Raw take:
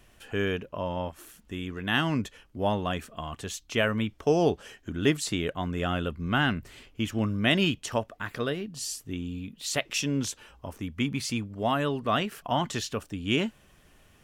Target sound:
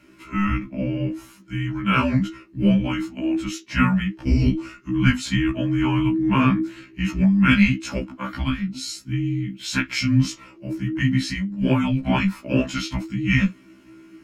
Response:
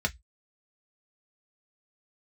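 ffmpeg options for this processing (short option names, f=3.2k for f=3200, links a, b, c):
-filter_complex "[1:a]atrim=start_sample=2205[a];[0:a][a]afir=irnorm=-1:irlink=0,afreqshift=-400,afftfilt=real='re*1.73*eq(mod(b,3),0)':imag='im*1.73*eq(mod(b,3),0)':win_size=2048:overlap=0.75"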